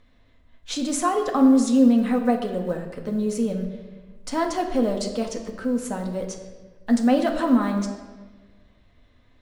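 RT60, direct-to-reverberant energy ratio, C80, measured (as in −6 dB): 1.4 s, 2.0 dB, 8.5 dB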